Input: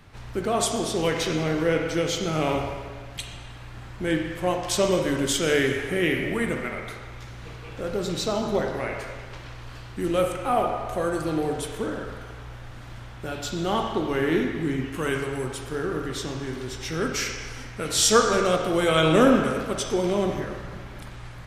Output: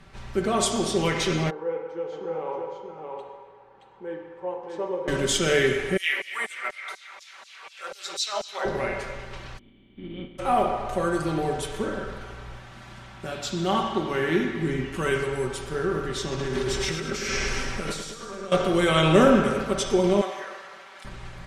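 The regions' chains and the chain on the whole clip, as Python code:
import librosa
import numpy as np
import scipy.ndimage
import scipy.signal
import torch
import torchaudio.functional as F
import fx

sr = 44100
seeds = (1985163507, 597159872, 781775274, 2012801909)

y = fx.chain(x, sr, fx.double_bandpass(hz=650.0, octaves=0.8),
    fx.echo_single(ms=623, db=-4.5), at=(1.5, 5.08))
y = fx.chain(y, sr, fx.peak_eq(hz=140.0, db=-7.0, octaves=1.8),
    fx.filter_lfo_highpass(shape='saw_down', hz=4.1, low_hz=560.0, high_hz=6800.0, q=1.4), at=(5.97, 8.65))
y = fx.spec_flatten(y, sr, power=0.39, at=(9.57, 10.38), fade=0.02)
y = fx.formant_cascade(y, sr, vowel='i', at=(9.57, 10.38), fade=0.02)
y = fx.peak_eq(y, sr, hz=2600.0, db=-12.5, octaves=0.48, at=(9.57, 10.38), fade=0.02)
y = fx.chain(y, sr, fx.highpass(hz=110.0, slope=6),
    fx.peak_eq(hz=460.0, db=-6.5, octaves=0.39), at=(12.59, 14.62))
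y = fx.chain(y, sr, fx.over_compress(threshold_db=-34.0, ratio=-1.0),
    fx.echo_feedback(ms=105, feedback_pct=55, wet_db=-7), at=(16.3, 18.52))
y = fx.chain(y, sr, fx.median_filter(points=3),
    fx.highpass(hz=780.0, slope=12), at=(20.21, 21.05))
y = scipy.signal.sosfilt(scipy.signal.butter(2, 10000.0, 'lowpass', fs=sr, output='sos'), y)
y = y + 0.56 * np.pad(y, (int(5.2 * sr / 1000.0), 0))[:len(y)]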